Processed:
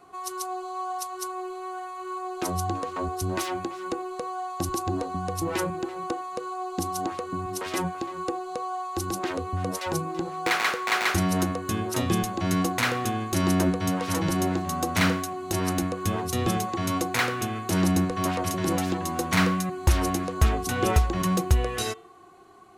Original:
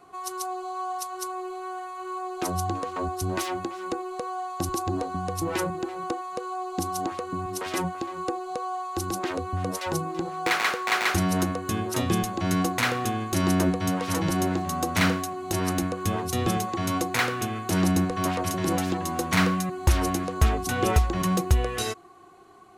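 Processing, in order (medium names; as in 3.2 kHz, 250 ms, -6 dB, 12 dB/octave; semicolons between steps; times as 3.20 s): de-hum 148.9 Hz, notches 24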